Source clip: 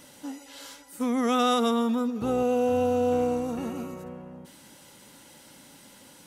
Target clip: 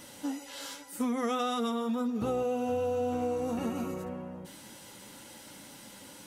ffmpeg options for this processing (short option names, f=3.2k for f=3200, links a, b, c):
-af "flanger=delay=8.9:depth=1.6:regen=-40:speed=1.9:shape=triangular,acompressor=threshold=-34dB:ratio=6,volume=6dB"